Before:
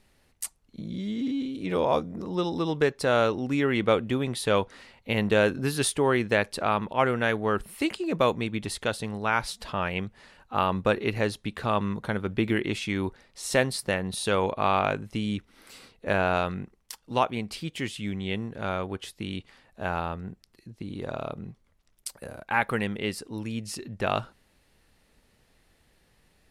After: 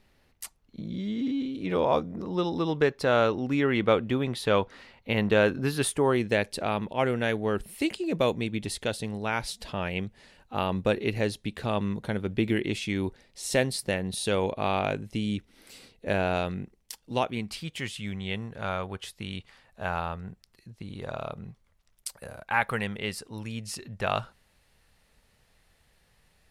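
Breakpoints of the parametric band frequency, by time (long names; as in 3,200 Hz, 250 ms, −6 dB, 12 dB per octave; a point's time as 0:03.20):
parametric band −8 dB 0.97 octaves
0:05.74 9,000 Hz
0:06.25 1,200 Hz
0:17.21 1,200 Hz
0:17.64 300 Hz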